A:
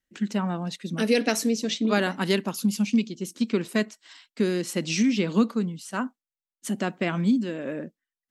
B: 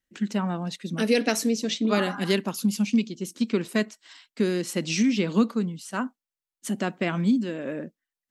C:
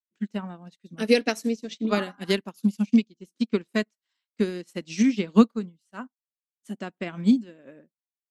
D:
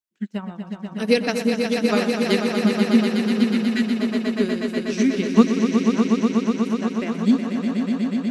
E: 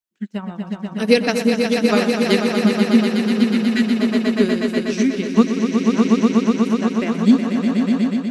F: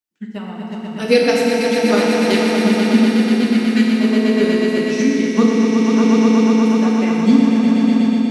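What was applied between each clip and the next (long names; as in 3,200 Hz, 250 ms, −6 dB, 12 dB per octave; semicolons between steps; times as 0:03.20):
healed spectral selection 0:01.98–0:02.31, 750–1,700 Hz both
expander for the loud parts 2.5 to 1, over −41 dBFS; level +6.5 dB
echo that builds up and dies away 122 ms, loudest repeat 5, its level −7 dB; healed spectral selection 0:03.14–0:03.93, 380–1,300 Hz both; level +1.5 dB
automatic gain control gain up to 6 dB
feedback delay network reverb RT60 2.5 s, low-frequency decay 0.95×, high-frequency decay 0.9×, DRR −2 dB; level −1.5 dB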